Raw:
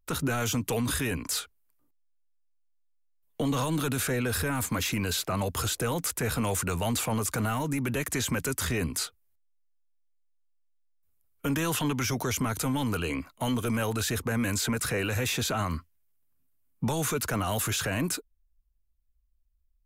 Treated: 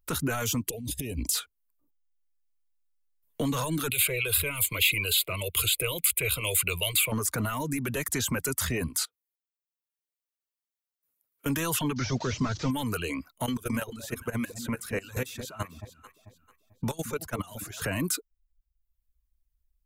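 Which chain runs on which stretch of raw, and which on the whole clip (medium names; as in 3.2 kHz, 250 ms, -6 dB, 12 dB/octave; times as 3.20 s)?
0.69–1.35 s: peaking EQ 61 Hz +12.5 dB 0.76 oct + compressor with a negative ratio -31 dBFS, ratio -0.5 + Butterworth band-stop 1.3 kHz, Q 0.66
3.90–7.12 s: resonant high shelf 1.7 kHz +7.5 dB, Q 3 + static phaser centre 1.2 kHz, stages 8
9.05–11.46 s: high-pass 240 Hz + compression 4:1, threshold -52 dBFS
11.96–12.71 s: one-bit delta coder 32 kbps, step -41 dBFS + tone controls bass +4 dB, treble +10 dB + hum notches 60/120/180 Hz
13.46–17.82 s: de-hum 71.23 Hz, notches 3 + level held to a coarse grid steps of 14 dB + echo whose repeats swap between lows and highs 221 ms, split 830 Hz, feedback 55%, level -8.5 dB
whole clip: reverb removal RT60 0.71 s; treble shelf 10 kHz +7 dB; band-stop 780 Hz, Q 12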